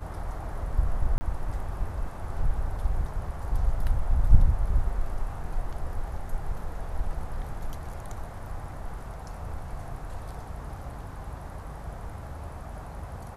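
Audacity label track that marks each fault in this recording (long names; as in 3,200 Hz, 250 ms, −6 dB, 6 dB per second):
1.180000	1.210000	drop-out 30 ms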